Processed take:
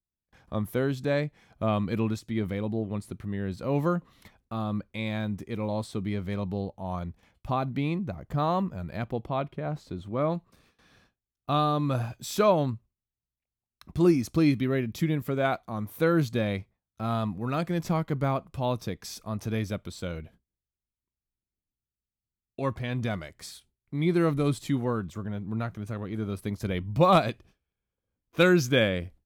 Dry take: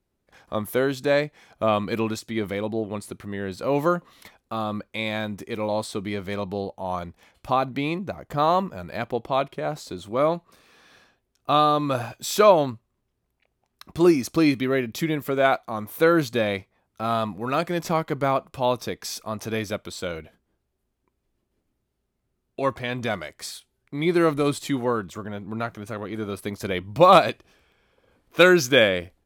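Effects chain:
noise gate with hold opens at −45 dBFS
bass and treble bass +12 dB, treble −2 dB, from 0:09.28 treble −10 dB, from 0:10.29 treble 0 dB
level −7.5 dB

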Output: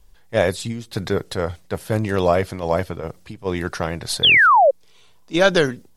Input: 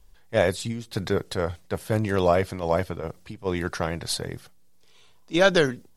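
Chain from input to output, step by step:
sound drawn into the spectrogram fall, 0:04.23–0:04.71, 510–3,600 Hz −15 dBFS
level +3 dB

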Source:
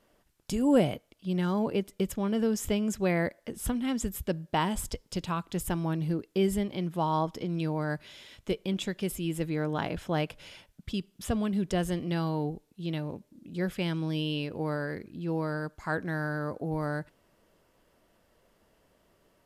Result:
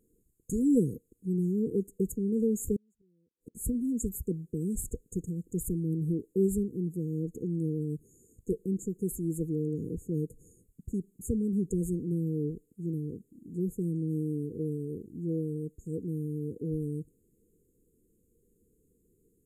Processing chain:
0:02.76–0:03.55: gate with flip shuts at −27 dBFS, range −40 dB
linear-phase brick-wall band-stop 500–6,500 Hz

